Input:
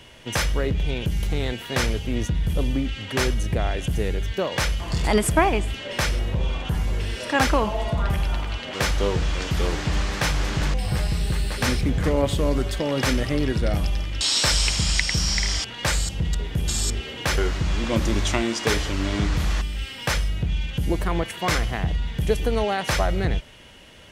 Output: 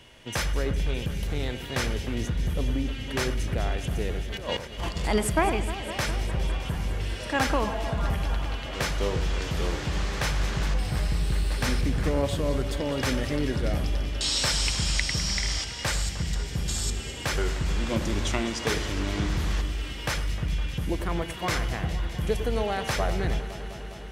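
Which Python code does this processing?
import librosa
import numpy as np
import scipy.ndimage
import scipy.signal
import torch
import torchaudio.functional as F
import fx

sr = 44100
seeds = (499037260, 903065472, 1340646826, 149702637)

p1 = fx.over_compress(x, sr, threshold_db=-30.0, ratio=-0.5, at=(4.22, 4.95), fade=0.02)
p2 = p1 + fx.echo_alternate(p1, sr, ms=102, hz=2000.0, feedback_pct=89, wet_db=-11.5, dry=0)
y = F.gain(torch.from_numpy(p2), -5.0).numpy()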